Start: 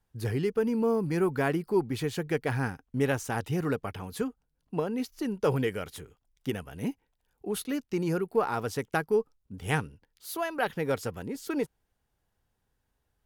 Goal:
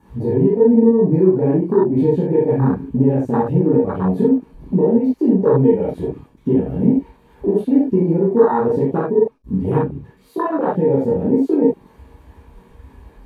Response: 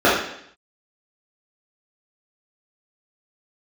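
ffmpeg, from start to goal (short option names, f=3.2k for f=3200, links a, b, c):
-filter_complex "[0:a]aeval=exprs='val(0)+0.5*0.00891*sgn(val(0))':c=same,acompressor=threshold=-32dB:ratio=5[a];[1:a]atrim=start_sample=2205,atrim=end_sample=3087,asetrate=29547,aresample=44100[b];[a][b]afir=irnorm=-1:irlink=0,afwtdn=0.447,volume=-10.5dB"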